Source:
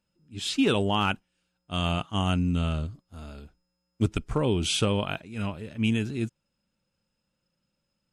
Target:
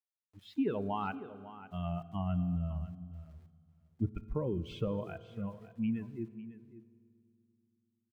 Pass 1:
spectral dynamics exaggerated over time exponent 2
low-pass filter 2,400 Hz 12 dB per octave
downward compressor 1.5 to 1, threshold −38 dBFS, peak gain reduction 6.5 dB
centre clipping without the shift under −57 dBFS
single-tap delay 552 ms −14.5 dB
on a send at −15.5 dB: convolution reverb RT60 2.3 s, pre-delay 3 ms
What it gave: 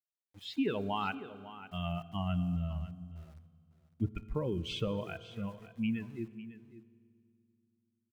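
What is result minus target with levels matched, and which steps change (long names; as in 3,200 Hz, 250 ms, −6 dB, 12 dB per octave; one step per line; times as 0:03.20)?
2,000 Hz band +6.0 dB; centre clipping without the shift: distortion +8 dB
change: low-pass filter 1,200 Hz 12 dB per octave
change: centre clipping without the shift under −63.5 dBFS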